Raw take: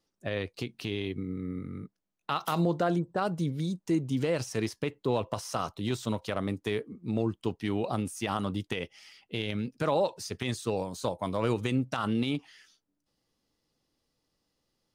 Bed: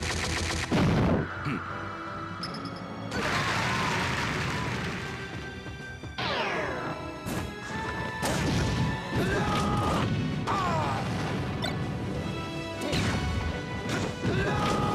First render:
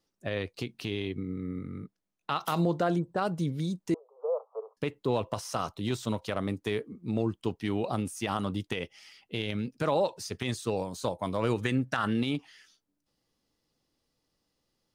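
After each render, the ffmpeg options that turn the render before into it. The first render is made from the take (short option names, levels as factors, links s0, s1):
-filter_complex "[0:a]asettb=1/sr,asplit=3[s0][s1][s2];[s0]atrim=end=1.044[s3];[s1]atrim=start=1.04:end=2.41,asetpts=PTS-STARTPTS,afade=t=in:d=0.004:c=qsin,afade=t=out:st=1.366:d=0.004:c=qsin,highshelf=f=12000:g=-9[s4];[s2]atrim=start=2.406[s5];[s3][s4]acrossfade=d=0.004:c1=hsin:c2=qsin[s6];[s6][s5]acrossfade=d=0.004:c1=qsin:c2=hsin,asettb=1/sr,asplit=3[s7][s8][s9];[s7]atrim=end=3.944[s10];[s8]atrim=start=3.94:end=4.77,asetpts=PTS-STARTPTS,afade=t=in:d=0.004:c=qsin,afade=t=out:st=0.826:d=0.004:c=qsin,asuperpass=centerf=740:order=20:qfactor=0.92[s11];[s9]atrim=start=4.766[s12];[s10][s11]acrossfade=d=0.004:c1=hsin:c2=qsin[s13];[s13][s12]acrossfade=d=0.004:c1=qsin:c2=hsin,asettb=1/sr,asplit=3[s14][s15][s16];[s14]atrim=end=11.624[s17];[s15]atrim=start=11.62:end=12.21,asetpts=PTS-STARTPTS,afade=t=in:d=0.004:c=qsin,afade=t=out:st=0.586:d=0.004:c=qsin,equalizer=f=1700:w=3.9:g=12[s18];[s16]atrim=start=12.206[s19];[s17][s18]acrossfade=d=0.004:c1=hsin:c2=qsin[s20];[s20][s19]acrossfade=d=0.004:c1=qsin:c2=hsin"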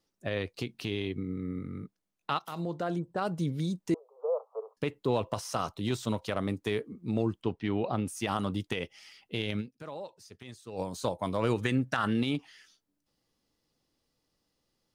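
-filter_complex "[0:a]asettb=1/sr,asplit=3[s0][s1][s2];[s0]atrim=end=7.434[s3];[s1]atrim=start=7.43:end=8.08,asetpts=PTS-STARTPTS,afade=t=in:d=0.004:c=qsin,afade=t=out:st=0.646:d=0.004:c=qsin,lowpass=3400[s4];[s2]atrim=start=8.076[s5];[s3][s4]acrossfade=d=0.004:c1=hsin:c2=qsin[s6];[s6][s5]acrossfade=d=0.004:c1=qsin:c2=hsin,asplit=4[s7][s8][s9][s10];[s7]atrim=end=2.39,asetpts=PTS-STARTPTS,afade=t=out:st=2.386:d=0.004:c=hsin:silence=0.223872[s11];[s8]atrim=start=2.39:end=9.92,asetpts=PTS-STARTPTS,afade=t=in:d=1.16:silence=0.223872,afade=t=out:st=7.21:d=0.32:c=exp:silence=0.188365[s12];[s9]atrim=start=9.92:end=10.48,asetpts=PTS-STARTPTS,volume=0.188[s13];[s10]atrim=start=10.48,asetpts=PTS-STARTPTS,afade=t=in:d=0.32:c=exp:silence=0.188365[s14];[s11][s12][s13][s14]concat=n=4:v=0:a=1"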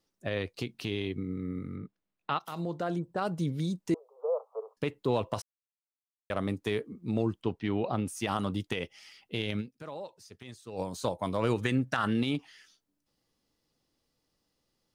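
-filter_complex "[0:a]asettb=1/sr,asplit=3[s0][s1][s2];[s0]atrim=end=1.764[s3];[s1]atrim=start=1.76:end=2.4,asetpts=PTS-STARTPTS,afade=t=in:d=0.004:c=qsin,afade=t=out:st=0.636:d=0.004:c=qsin,lowpass=3500[s4];[s2]atrim=start=2.396[s5];[s3][s4]acrossfade=d=0.004:c1=hsin:c2=qsin[s6];[s6][s5]acrossfade=d=0.004:c1=qsin:c2=hsin,asplit=3[s7][s8][s9];[s7]atrim=end=5.42,asetpts=PTS-STARTPTS,afade=t=out:st=5.416:d=0.004:c=hsin[s10];[s8]atrim=start=5.42:end=6.3,asetpts=PTS-STARTPTS,volume=0[s11];[s9]atrim=start=6.3,asetpts=PTS-STARTPTS,afade=t=in:d=0.004:c=hsin[s12];[s10][s11][s12]concat=n=3:v=0:a=1"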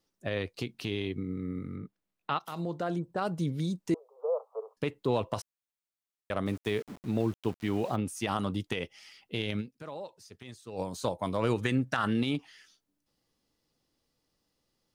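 -filter_complex "[0:a]asettb=1/sr,asplit=3[s0][s1][s2];[s0]atrim=end=6.464[s3];[s1]atrim=start=6.46:end=7.96,asetpts=PTS-STARTPTS,afade=t=in:d=0.004:c=qsin,afade=t=out:st=1.496:d=0.004:c=qsin,aeval=exprs='val(0)*gte(abs(val(0)),0.00596)':c=same[s4];[s2]atrim=start=7.956[s5];[s3][s4]acrossfade=d=0.004:c1=hsin:c2=qsin[s6];[s6][s5]acrossfade=d=0.004:c1=qsin:c2=hsin"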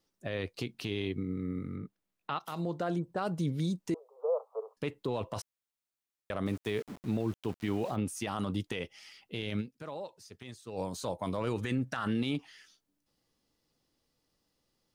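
-af "alimiter=limit=0.0708:level=0:latency=1:release=24"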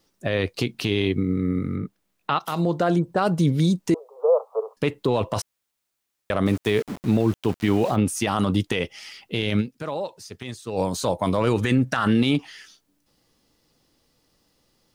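-af "volume=3.98"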